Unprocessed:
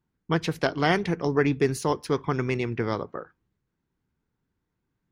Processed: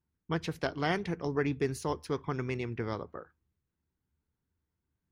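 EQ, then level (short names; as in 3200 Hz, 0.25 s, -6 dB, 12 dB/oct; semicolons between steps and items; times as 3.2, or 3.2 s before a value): bell 76 Hz +13.5 dB 0.41 oct; -8.0 dB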